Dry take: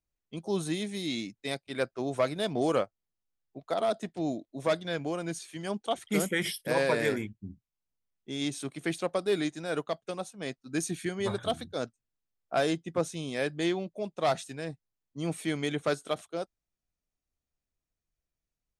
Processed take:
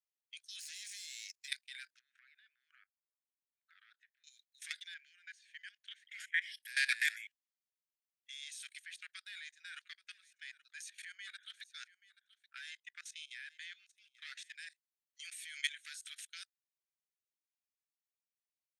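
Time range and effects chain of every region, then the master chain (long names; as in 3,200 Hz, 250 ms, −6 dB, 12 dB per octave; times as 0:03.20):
0:00.59–0:01.48: lower of the sound and its delayed copy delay 0.4 ms + downward compressor, threshold −39 dBFS + parametric band 6,000 Hz +12.5 dB 1.1 octaves
0:01.99–0:04.24: low-pass filter 1,100 Hz + downward compressor 20 to 1, threshold −33 dBFS
0:04.94–0:06.63: four-pole ladder band-pass 1,900 Hz, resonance 55% + high-shelf EQ 2,500 Hz +7 dB
0:08.84–0:14.55: spectral tilt −4 dB per octave + single-tap delay 828 ms −19.5 dB
whole clip: Butterworth high-pass 1,600 Hz 72 dB per octave; output level in coarse steps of 18 dB; level +5.5 dB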